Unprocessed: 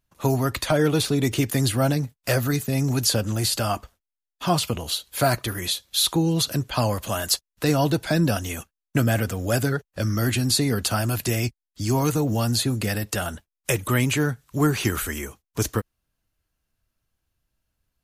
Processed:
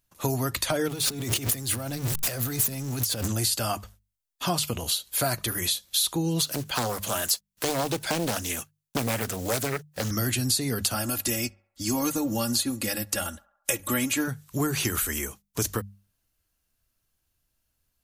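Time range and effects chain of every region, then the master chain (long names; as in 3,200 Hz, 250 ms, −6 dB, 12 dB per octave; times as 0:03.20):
0:00.88–0:03.28: converter with a step at zero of −27 dBFS + compressor whose output falls as the input rises −28 dBFS
0:06.41–0:10.11: one scale factor per block 5 bits + low-shelf EQ 94 Hz −10.5 dB + highs frequency-modulated by the lows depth 0.75 ms
0:10.94–0:14.28: comb filter 3.6 ms, depth 73% + feedback echo with a band-pass in the loop 68 ms, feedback 66%, band-pass 1,000 Hz, level −20 dB + expander for the loud parts, over −35 dBFS
whole clip: high-shelf EQ 4,500 Hz +9 dB; mains-hum notches 50/100/150/200 Hz; downward compressor 3 to 1, threshold −23 dBFS; level −1 dB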